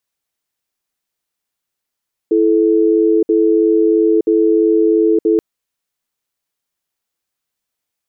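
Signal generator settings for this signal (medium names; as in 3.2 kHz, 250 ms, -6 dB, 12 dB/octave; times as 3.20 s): cadence 331 Hz, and 434 Hz, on 0.92 s, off 0.06 s, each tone -12 dBFS 3.08 s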